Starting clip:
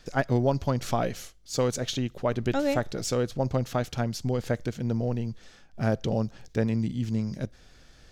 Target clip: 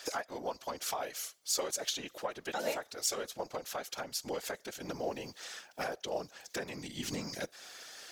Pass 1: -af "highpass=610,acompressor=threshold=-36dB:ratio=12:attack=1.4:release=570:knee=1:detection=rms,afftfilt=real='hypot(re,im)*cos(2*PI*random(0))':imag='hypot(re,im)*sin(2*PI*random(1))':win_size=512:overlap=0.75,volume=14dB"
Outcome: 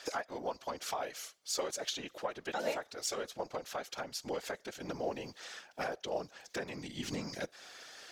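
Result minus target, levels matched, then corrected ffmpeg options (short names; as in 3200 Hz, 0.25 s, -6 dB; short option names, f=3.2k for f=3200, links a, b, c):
8000 Hz band -3.5 dB
-af "highpass=610,acompressor=threshold=-36dB:ratio=12:attack=1.4:release=570:knee=1:detection=rms,highshelf=f=7.8k:g=11.5,afftfilt=real='hypot(re,im)*cos(2*PI*random(0))':imag='hypot(re,im)*sin(2*PI*random(1))':win_size=512:overlap=0.75,volume=14dB"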